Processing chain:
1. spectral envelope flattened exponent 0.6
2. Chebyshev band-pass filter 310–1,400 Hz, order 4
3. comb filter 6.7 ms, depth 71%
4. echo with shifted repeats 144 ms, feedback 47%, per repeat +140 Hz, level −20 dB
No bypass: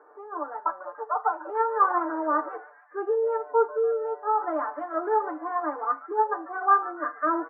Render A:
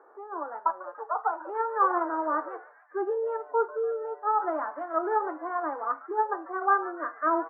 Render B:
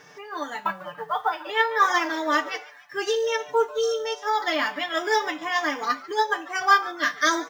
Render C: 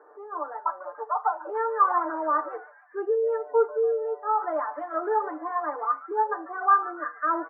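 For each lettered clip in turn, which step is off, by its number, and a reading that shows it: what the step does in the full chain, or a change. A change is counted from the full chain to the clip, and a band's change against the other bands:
3, change in momentary loudness spread −3 LU
2, 2 kHz band +11.5 dB
1, 250 Hz band −4.0 dB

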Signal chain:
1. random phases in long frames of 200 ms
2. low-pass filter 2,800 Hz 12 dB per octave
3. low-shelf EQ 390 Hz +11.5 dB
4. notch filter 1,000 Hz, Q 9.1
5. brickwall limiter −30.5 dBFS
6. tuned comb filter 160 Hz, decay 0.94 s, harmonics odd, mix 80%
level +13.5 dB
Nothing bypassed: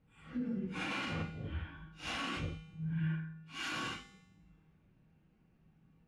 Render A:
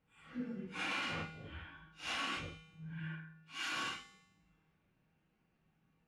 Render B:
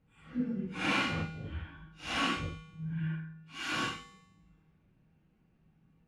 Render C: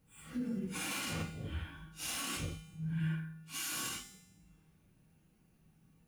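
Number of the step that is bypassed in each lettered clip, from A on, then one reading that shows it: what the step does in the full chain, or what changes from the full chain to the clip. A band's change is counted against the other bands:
3, 125 Hz band −9.5 dB
5, average gain reduction 1.5 dB
2, 8 kHz band +14.5 dB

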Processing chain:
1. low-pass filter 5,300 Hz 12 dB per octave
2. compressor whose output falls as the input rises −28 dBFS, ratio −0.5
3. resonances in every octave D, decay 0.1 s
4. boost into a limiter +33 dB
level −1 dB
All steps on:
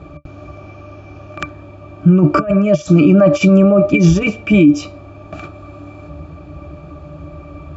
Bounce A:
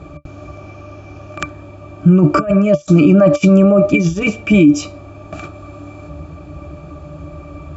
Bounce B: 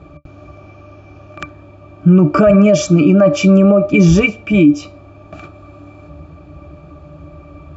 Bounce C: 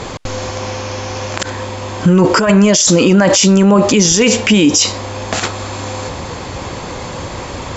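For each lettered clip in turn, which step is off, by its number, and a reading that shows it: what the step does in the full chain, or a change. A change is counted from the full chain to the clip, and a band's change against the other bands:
1, change in momentary loudness spread +3 LU
2, change in momentary loudness spread −12 LU
3, 4 kHz band +15.0 dB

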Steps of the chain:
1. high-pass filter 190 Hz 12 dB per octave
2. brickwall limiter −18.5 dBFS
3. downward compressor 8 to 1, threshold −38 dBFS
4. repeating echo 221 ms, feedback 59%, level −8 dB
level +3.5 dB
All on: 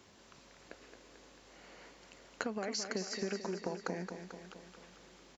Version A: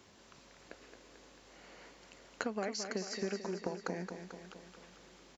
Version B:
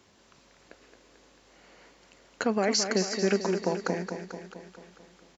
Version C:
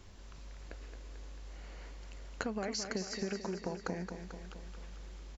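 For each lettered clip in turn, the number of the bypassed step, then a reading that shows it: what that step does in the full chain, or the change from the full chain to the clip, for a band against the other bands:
2, 4 kHz band −2.0 dB
3, average gain reduction 4.0 dB
1, 125 Hz band +4.5 dB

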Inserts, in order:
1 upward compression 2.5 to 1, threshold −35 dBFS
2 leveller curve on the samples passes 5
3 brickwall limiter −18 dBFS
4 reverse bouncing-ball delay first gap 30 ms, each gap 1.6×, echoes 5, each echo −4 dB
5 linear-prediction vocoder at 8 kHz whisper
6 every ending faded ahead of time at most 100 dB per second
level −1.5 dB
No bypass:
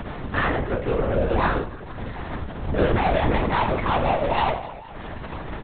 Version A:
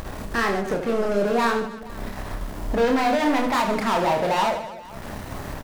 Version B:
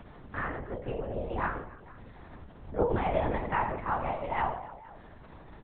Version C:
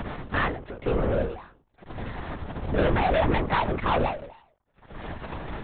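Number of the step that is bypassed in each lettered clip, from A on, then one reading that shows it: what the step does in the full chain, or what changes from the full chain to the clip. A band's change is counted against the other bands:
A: 5, change in crest factor −3.5 dB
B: 2, 4 kHz band −7.5 dB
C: 4, change in momentary loudness spread +3 LU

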